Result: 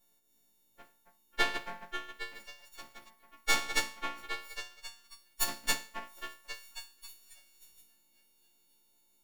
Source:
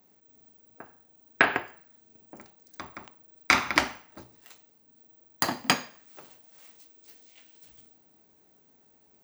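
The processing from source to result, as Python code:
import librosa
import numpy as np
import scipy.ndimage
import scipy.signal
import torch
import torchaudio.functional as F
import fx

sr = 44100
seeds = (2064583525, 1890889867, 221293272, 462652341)

y = fx.freq_snap(x, sr, grid_st=4)
y = fx.echo_stepped(y, sr, ms=270, hz=810.0, octaves=0.7, feedback_pct=70, wet_db=-4.5)
y = np.maximum(y, 0.0)
y = y * 10.0 ** (-9.0 / 20.0)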